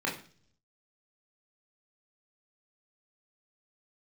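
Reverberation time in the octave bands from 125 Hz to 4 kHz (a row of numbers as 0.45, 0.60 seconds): 0.95, 0.70, 0.50, 0.40, 0.40, 0.55 seconds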